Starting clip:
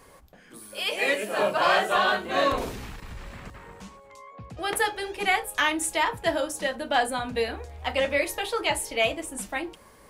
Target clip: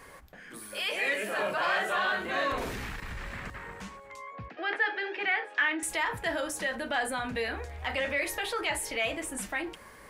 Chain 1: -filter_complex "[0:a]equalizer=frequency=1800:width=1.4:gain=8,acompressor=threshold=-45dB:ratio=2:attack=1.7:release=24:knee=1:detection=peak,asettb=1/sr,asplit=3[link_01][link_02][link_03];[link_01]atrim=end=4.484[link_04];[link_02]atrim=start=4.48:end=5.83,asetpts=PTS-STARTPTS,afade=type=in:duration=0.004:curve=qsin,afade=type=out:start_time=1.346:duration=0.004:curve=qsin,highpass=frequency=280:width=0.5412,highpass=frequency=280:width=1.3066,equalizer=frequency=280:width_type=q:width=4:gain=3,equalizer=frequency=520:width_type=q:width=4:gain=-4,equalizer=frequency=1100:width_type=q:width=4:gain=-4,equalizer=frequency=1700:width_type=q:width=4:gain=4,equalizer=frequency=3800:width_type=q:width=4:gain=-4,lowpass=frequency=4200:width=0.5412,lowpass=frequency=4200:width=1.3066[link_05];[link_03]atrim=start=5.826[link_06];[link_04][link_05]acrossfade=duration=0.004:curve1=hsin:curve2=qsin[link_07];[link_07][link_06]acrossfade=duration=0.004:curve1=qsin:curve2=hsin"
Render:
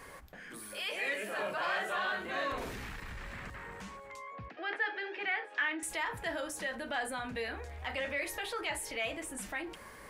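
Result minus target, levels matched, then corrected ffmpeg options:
downward compressor: peak gain reduction +5.5 dB
-filter_complex "[0:a]equalizer=frequency=1800:width=1.4:gain=8,acompressor=threshold=-34dB:ratio=2:attack=1.7:release=24:knee=1:detection=peak,asettb=1/sr,asplit=3[link_01][link_02][link_03];[link_01]atrim=end=4.484[link_04];[link_02]atrim=start=4.48:end=5.83,asetpts=PTS-STARTPTS,afade=type=in:duration=0.004:curve=qsin,afade=type=out:start_time=1.346:duration=0.004:curve=qsin,highpass=frequency=280:width=0.5412,highpass=frequency=280:width=1.3066,equalizer=frequency=280:width_type=q:width=4:gain=3,equalizer=frequency=520:width_type=q:width=4:gain=-4,equalizer=frequency=1100:width_type=q:width=4:gain=-4,equalizer=frequency=1700:width_type=q:width=4:gain=4,equalizer=frequency=3800:width_type=q:width=4:gain=-4,lowpass=frequency=4200:width=0.5412,lowpass=frequency=4200:width=1.3066[link_05];[link_03]atrim=start=5.826[link_06];[link_04][link_05]acrossfade=duration=0.004:curve1=hsin:curve2=qsin[link_07];[link_07][link_06]acrossfade=duration=0.004:curve1=qsin:curve2=hsin"

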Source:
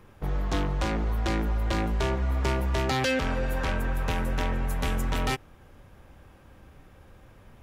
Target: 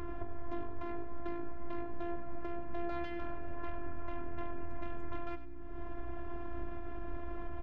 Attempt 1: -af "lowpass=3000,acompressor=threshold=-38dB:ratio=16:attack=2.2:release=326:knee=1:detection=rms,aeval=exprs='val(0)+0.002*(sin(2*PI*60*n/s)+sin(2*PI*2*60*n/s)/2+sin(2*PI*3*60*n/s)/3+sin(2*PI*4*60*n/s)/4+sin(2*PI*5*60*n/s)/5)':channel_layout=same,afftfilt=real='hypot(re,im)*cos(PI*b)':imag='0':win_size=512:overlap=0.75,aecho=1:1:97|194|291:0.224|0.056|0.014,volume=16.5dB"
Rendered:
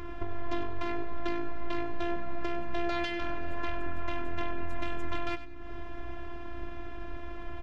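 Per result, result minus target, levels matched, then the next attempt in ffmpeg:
4,000 Hz band +10.5 dB; downward compressor: peak gain reduction −6.5 dB
-af "lowpass=1400,acompressor=threshold=-38dB:ratio=16:attack=2.2:release=326:knee=1:detection=rms,aeval=exprs='val(0)+0.002*(sin(2*PI*60*n/s)+sin(2*PI*2*60*n/s)/2+sin(2*PI*3*60*n/s)/3+sin(2*PI*4*60*n/s)/4+sin(2*PI*5*60*n/s)/5)':channel_layout=same,afftfilt=real='hypot(re,im)*cos(PI*b)':imag='0':win_size=512:overlap=0.75,aecho=1:1:97|194|291:0.224|0.056|0.014,volume=16.5dB"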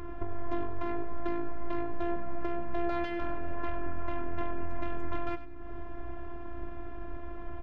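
downward compressor: peak gain reduction −7 dB
-af "lowpass=1400,acompressor=threshold=-45.5dB:ratio=16:attack=2.2:release=326:knee=1:detection=rms,aeval=exprs='val(0)+0.002*(sin(2*PI*60*n/s)+sin(2*PI*2*60*n/s)/2+sin(2*PI*3*60*n/s)/3+sin(2*PI*4*60*n/s)/4+sin(2*PI*5*60*n/s)/5)':channel_layout=same,afftfilt=real='hypot(re,im)*cos(PI*b)':imag='0':win_size=512:overlap=0.75,aecho=1:1:97|194|291:0.224|0.056|0.014,volume=16.5dB"

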